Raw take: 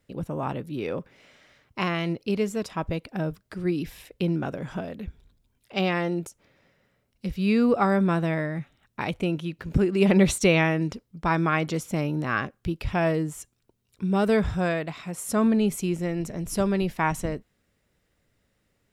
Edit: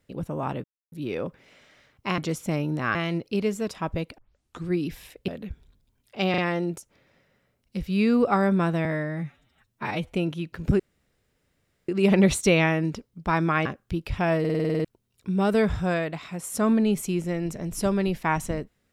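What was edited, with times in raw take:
0.64 insert silence 0.28 s
3.13 tape start 0.50 s
4.23–4.85 cut
5.87 stutter 0.04 s, 3 plays
8.34–9.19 stretch 1.5×
9.86 insert room tone 1.09 s
11.63–12.4 move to 1.9
13.14 stutter in place 0.05 s, 9 plays

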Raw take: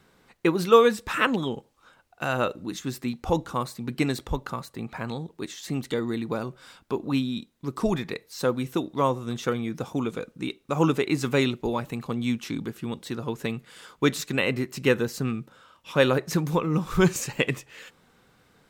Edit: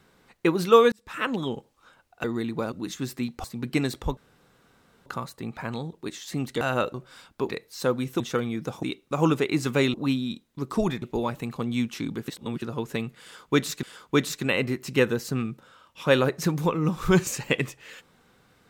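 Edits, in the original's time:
0.92–1.51 fade in
2.24–2.57 swap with 5.97–6.45
3.29–3.69 cut
4.42 insert room tone 0.89 s
7–8.08 move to 11.52
8.79–9.33 cut
9.96–10.41 cut
12.78–13.12 reverse
13.72–14.33 loop, 2 plays

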